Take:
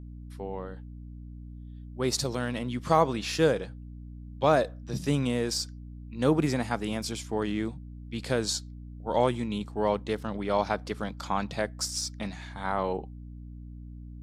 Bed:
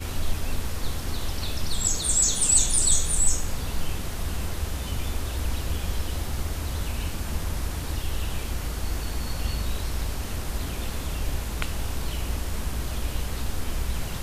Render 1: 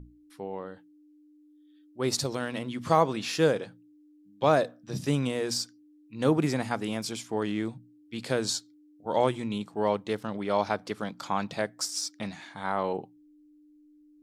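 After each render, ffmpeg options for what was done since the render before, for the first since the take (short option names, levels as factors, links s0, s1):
-af "bandreject=f=60:t=h:w=6,bandreject=f=120:t=h:w=6,bandreject=f=180:t=h:w=6,bandreject=f=240:t=h:w=6"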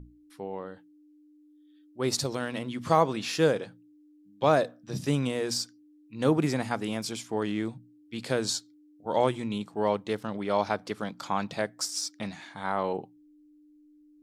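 -af anull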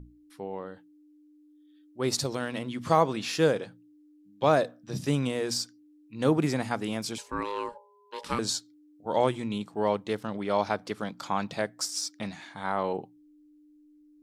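-filter_complex "[0:a]asettb=1/sr,asplit=3[s0][s1][s2];[s0]atrim=end=7.184[s3];[s1]atrim=start=7.18:end=8.39,asetpts=PTS-STARTPTS,afade=t=in:d=0.004:c=qsin,afade=t=out:st=1.206:d=0.004:c=qsin,aeval=exprs='val(0)*sin(2*PI*710*n/s)':c=same[s4];[s2]atrim=start=8.386[s5];[s3][s4]acrossfade=d=0.004:c1=hsin:c2=qsin[s6];[s6][s5]acrossfade=d=0.004:c1=qsin:c2=hsin"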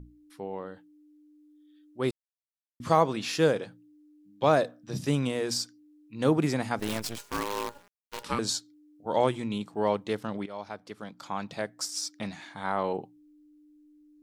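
-filter_complex "[0:a]asettb=1/sr,asplit=3[s0][s1][s2];[s0]atrim=end=6.794[s3];[s1]atrim=start=6.79:end=8.23,asetpts=PTS-STARTPTS,afade=t=in:d=0.004:c=qsin,afade=t=out:st=1.436:d=0.004:c=qsin,acrusher=bits=6:dc=4:mix=0:aa=0.000001[s4];[s2]atrim=start=8.226[s5];[s3][s4]acrossfade=d=0.004:c1=hsin:c2=qsin[s6];[s6][s5]acrossfade=d=0.004:c1=qsin:c2=hsin,asplit=4[s7][s8][s9][s10];[s7]atrim=end=2.11,asetpts=PTS-STARTPTS,afade=t=out:st=2.106:d=0.004:c=hsin[s11];[s8]atrim=start=2.11:end=2.8,asetpts=PTS-STARTPTS,volume=0[s12];[s9]atrim=start=2.8:end=10.46,asetpts=PTS-STARTPTS,afade=t=in:d=0.004:c=hsin,afade=t=out:st=7.656:d=0.004:c=hsin:silence=0.16788[s13];[s10]atrim=start=10.46,asetpts=PTS-STARTPTS,afade=t=in:d=1.81:silence=0.16788[s14];[s11][s12][s13][s14]concat=n=4:v=0:a=1"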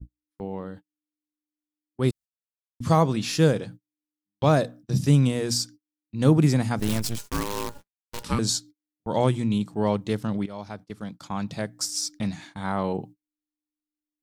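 -af "agate=range=0.01:threshold=0.00501:ratio=16:detection=peak,bass=f=250:g=13,treble=f=4000:g=6"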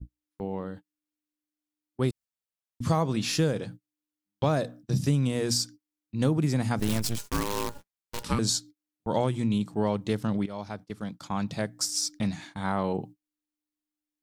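-af "acompressor=threshold=0.0891:ratio=6"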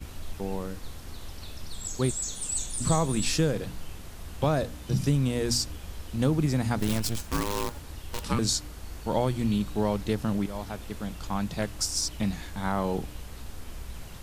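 -filter_complex "[1:a]volume=0.266[s0];[0:a][s0]amix=inputs=2:normalize=0"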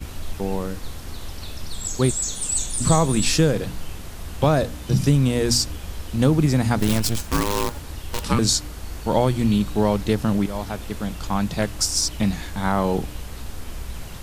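-af "volume=2.24"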